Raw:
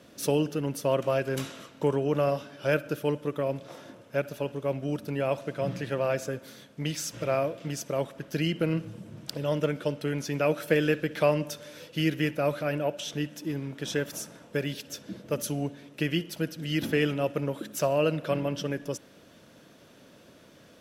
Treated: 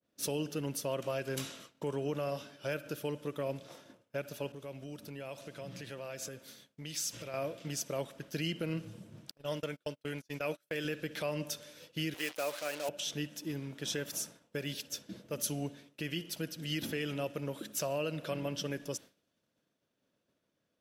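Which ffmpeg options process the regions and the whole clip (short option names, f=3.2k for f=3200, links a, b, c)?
-filter_complex "[0:a]asettb=1/sr,asplit=3[a][b][c];[a]atrim=end=4.524[d];[b]atrim=start=4.52:end=7.34,asetpts=PTS-STARTPTS,afade=t=in:d=0.004:c=qsin,afade=t=out:st=2.816:d=0.004:c=qsin,acompressor=threshold=-38dB:ratio=2.5:attack=3.2:release=140:knee=1:detection=peak,adynamicequalizer=threshold=0.00224:dfrequency=2100:dqfactor=0.7:tfrequency=2100:tqfactor=0.7:attack=5:release=100:ratio=0.375:range=2:mode=boostabove:tftype=highshelf[e];[c]atrim=start=7.336[f];[d][e]acrossfade=d=0.004:c1=hsin:c2=qsin[g];[g][f]acrossfade=d=0.004:c1=qsin:c2=hsin,asettb=1/sr,asplit=3[h][i][j];[h]atrim=end=9.314[k];[i]atrim=start=9.31:end=10.85,asetpts=PTS-STARTPTS,afade=t=in:d=0.004:c=qsin,afade=t=out:st=1.536:d=0.004:c=qsin,agate=range=-35dB:threshold=-32dB:ratio=16:release=100:detection=peak,lowshelf=f=500:g=-5[l];[j]atrim=start=10.846[m];[k][l]acrossfade=d=0.004:c1=hsin:c2=qsin[n];[n][m]acrossfade=d=0.004:c1=qsin:c2=hsin,asettb=1/sr,asplit=3[o][p][q];[o]atrim=end=12.144[r];[p]atrim=start=12.14:end=12.89,asetpts=PTS-STARTPTS,afade=t=in:d=0.004:c=qsin,afade=t=out:st=0.746:d=0.004:c=qsin,acrusher=bits=5:mix=0:aa=0.5,highpass=440[s];[q]atrim=start=12.886[t];[r][s]acrossfade=d=0.004:c1=hsin:c2=qsin[u];[u][t]acrossfade=d=0.004:c1=qsin:c2=hsin,agate=range=-33dB:threshold=-41dB:ratio=3:detection=peak,alimiter=limit=-20dB:level=0:latency=1:release=119,adynamicequalizer=threshold=0.00355:dfrequency=2500:dqfactor=0.7:tfrequency=2500:tqfactor=0.7:attack=5:release=100:ratio=0.375:range=3.5:mode=boostabove:tftype=highshelf,volume=-6.5dB"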